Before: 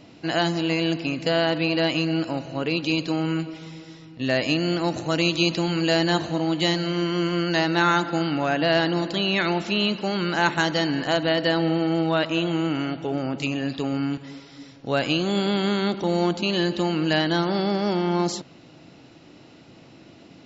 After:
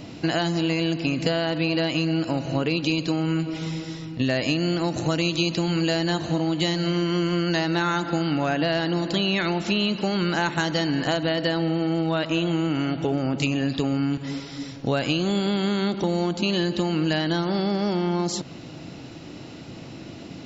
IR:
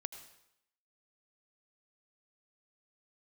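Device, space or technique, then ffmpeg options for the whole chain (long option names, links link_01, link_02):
ASMR close-microphone chain: -af "lowshelf=frequency=220:gain=6.5,acompressor=threshold=-27dB:ratio=6,highshelf=frequency=6400:gain=6.5,volume=6.5dB"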